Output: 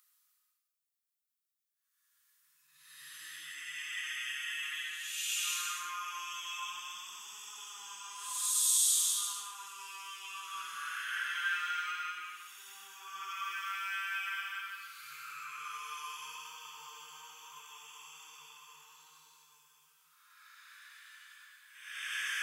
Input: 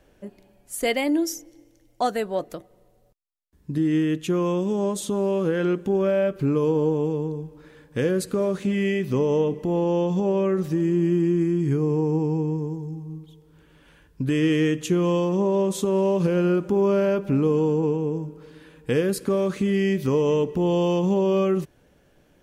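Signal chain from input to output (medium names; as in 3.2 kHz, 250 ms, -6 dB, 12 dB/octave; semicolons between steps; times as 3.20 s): Paulstretch 4.5×, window 0.25 s, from 3.05 s; elliptic high-pass 1.2 kHz, stop band 50 dB; treble shelf 6.6 kHz +11.5 dB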